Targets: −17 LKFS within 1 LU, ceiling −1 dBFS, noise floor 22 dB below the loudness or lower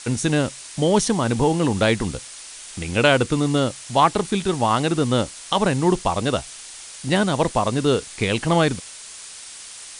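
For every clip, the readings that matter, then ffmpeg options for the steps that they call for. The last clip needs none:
background noise floor −39 dBFS; target noise floor −43 dBFS; integrated loudness −21.0 LKFS; sample peak −3.0 dBFS; target loudness −17.0 LKFS
→ -af "afftdn=noise_reduction=6:noise_floor=-39"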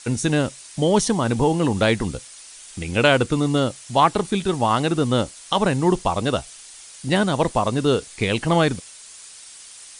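background noise floor −43 dBFS; integrated loudness −21.0 LKFS; sample peak −3.0 dBFS; target loudness −17.0 LKFS
→ -af "volume=4dB,alimiter=limit=-1dB:level=0:latency=1"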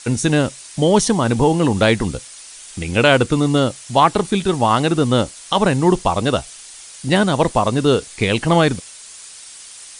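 integrated loudness −17.0 LKFS; sample peak −1.0 dBFS; background noise floor −39 dBFS

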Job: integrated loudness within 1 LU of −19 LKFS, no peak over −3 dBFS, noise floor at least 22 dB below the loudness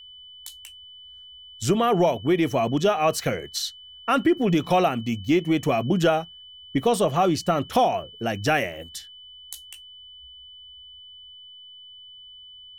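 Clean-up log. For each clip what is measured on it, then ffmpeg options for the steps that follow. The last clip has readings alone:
interfering tone 3,000 Hz; level of the tone −43 dBFS; integrated loudness −23.0 LKFS; sample peak −9.0 dBFS; target loudness −19.0 LKFS
→ -af "bandreject=frequency=3000:width=30"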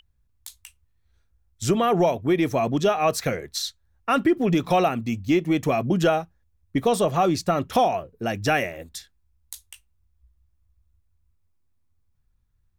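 interfering tone none found; integrated loudness −23.0 LKFS; sample peak −9.0 dBFS; target loudness −19.0 LKFS
→ -af "volume=4dB"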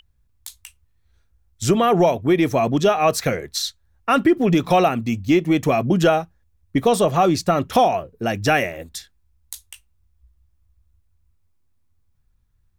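integrated loudness −19.0 LKFS; sample peak −5.0 dBFS; background noise floor −63 dBFS

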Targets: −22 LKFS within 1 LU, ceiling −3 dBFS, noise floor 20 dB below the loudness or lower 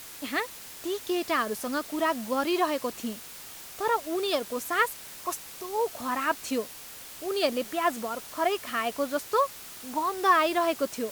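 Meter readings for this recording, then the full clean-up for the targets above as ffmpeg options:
background noise floor −44 dBFS; target noise floor −49 dBFS; integrated loudness −29.0 LKFS; sample peak −10.5 dBFS; target loudness −22.0 LKFS
→ -af "afftdn=noise_reduction=6:noise_floor=-44"
-af "volume=7dB"

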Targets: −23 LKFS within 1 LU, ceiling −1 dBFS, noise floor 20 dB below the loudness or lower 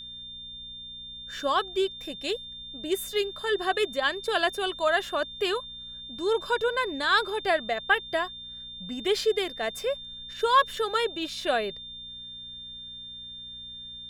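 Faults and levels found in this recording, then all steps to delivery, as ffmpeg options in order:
mains hum 60 Hz; hum harmonics up to 240 Hz; level of the hum −54 dBFS; interfering tone 3,600 Hz; level of the tone −39 dBFS; integrated loudness −27.5 LKFS; sample peak −8.5 dBFS; target loudness −23.0 LKFS
→ -af "bandreject=frequency=60:width_type=h:width=4,bandreject=frequency=120:width_type=h:width=4,bandreject=frequency=180:width_type=h:width=4,bandreject=frequency=240:width_type=h:width=4"
-af "bandreject=frequency=3600:width=30"
-af "volume=4.5dB"

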